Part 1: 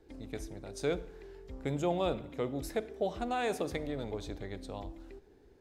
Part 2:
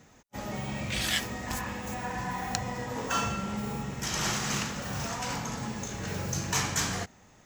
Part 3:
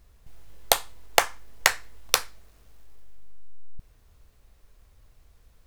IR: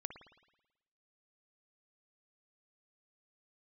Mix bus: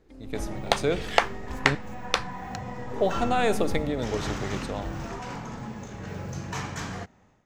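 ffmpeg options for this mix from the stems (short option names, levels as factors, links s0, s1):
-filter_complex "[0:a]volume=0.75,asplit=3[s0][s1][s2];[s0]atrim=end=1.75,asetpts=PTS-STARTPTS,afade=t=out:st=1.746:d=0.004:c=hsin[s3];[s1]atrim=start=1.75:end=2.93,asetpts=PTS-STARTPTS,volume=0[s4];[s2]atrim=start=2.93,asetpts=PTS-STARTPTS,afade=t=in:d=0.004:c=hsin[s5];[s3][s4][s5]concat=n=3:v=0:a=1[s6];[1:a]lowpass=f=1700:p=1,volume=0.251[s7];[2:a]lowpass=3600,volume=0.335[s8];[s6][s7][s8]amix=inputs=3:normalize=0,dynaudnorm=f=100:g=5:m=3.55"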